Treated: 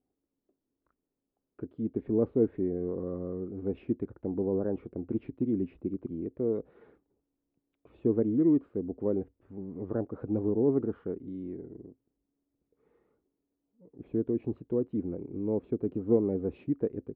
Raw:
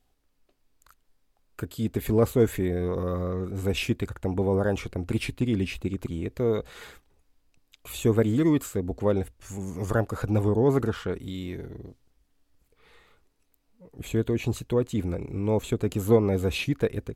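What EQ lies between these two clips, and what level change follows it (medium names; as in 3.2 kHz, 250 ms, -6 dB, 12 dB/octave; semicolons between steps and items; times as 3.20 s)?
band-pass filter 310 Hz, Q 1.6; distance through air 450 m; 0.0 dB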